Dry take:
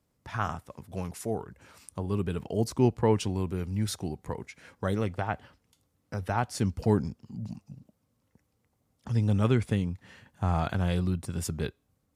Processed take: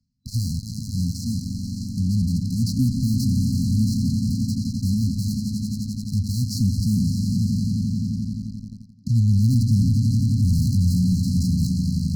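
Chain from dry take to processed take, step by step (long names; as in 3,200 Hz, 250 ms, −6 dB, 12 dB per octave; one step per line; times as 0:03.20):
de-essing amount 85%
low-pass filter 5,600 Hz 24 dB per octave
echo that builds up and dies away 87 ms, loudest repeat 5, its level −13 dB
in parallel at −4 dB: fuzz pedal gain 41 dB, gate −40 dBFS
on the sum: brick-wall band-stop 270–4,000 Hz
reversed playback
upward compression, threshold −29 dBFS
reversed playback
level −1.5 dB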